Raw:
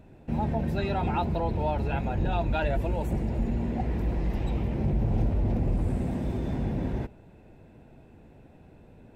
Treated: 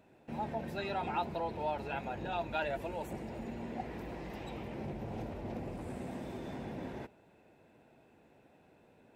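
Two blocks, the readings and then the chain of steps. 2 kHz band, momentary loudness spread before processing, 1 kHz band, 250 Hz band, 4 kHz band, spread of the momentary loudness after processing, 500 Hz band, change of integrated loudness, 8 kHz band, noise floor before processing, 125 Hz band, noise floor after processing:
-4.0 dB, 4 LU, -5.0 dB, -11.5 dB, -3.5 dB, 8 LU, -6.5 dB, -10.5 dB, n/a, -53 dBFS, -17.5 dB, -64 dBFS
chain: HPF 540 Hz 6 dB/oct; gain -3.5 dB

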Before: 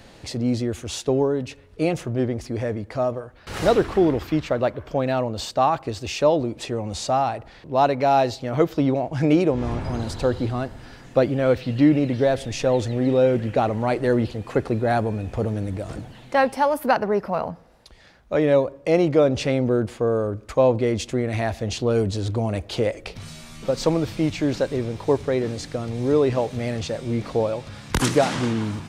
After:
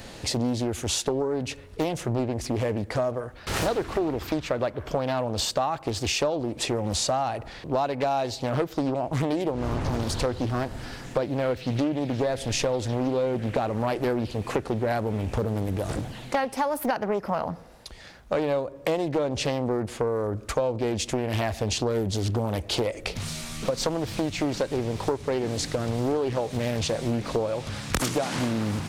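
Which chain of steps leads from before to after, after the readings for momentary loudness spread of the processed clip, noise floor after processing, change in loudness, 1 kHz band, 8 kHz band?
4 LU, -45 dBFS, -5.0 dB, -5.0 dB, +3.5 dB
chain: high shelf 6300 Hz +8 dB; compressor 8:1, threshold -27 dBFS, peak gain reduction 15 dB; Doppler distortion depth 0.62 ms; gain +4.5 dB

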